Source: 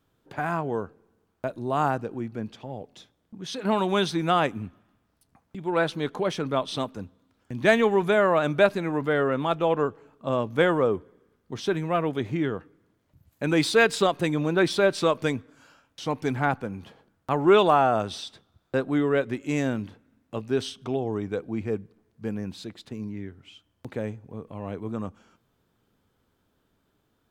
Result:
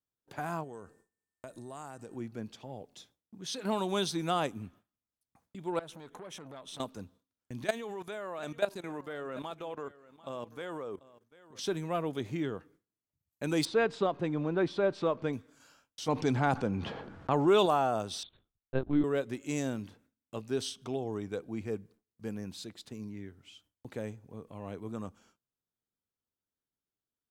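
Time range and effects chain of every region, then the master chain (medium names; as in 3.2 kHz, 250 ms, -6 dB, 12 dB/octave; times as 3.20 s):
0.63–2.15 s: compression 5:1, threshold -34 dBFS + whistle 1.8 kHz -69 dBFS + peaking EQ 8.2 kHz +15 dB 0.62 oct
5.79–6.80 s: peaking EQ 4.6 kHz -13 dB 0.32 oct + compression 5:1, threshold -34 dBFS + transformer saturation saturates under 900 Hz
7.64–11.59 s: bass shelf 210 Hz -7.5 dB + level held to a coarse grid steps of 16 dB + delay 741 ms -19 dB
13.65–15.33 s: companding laws mixed up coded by mu + low-pass 2 kHz
16.08–17.66 s: level-controlled noise filter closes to 2.2 kHz, open at -16 dBFS + level flattener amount 50%
18.23–19.04 s: bass shelf 230 Hz +12 dB + LPC vocoder at 8 kHz pitch kept + upward expansion, over -34 dBFS
whole clip: dynamic bell 1.9 kHz, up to -5 dB, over -37 dBFS, Q 1.1; gate with hold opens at -47 dBFS; tone controls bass -1 dB, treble +9 dB; trim -7 dB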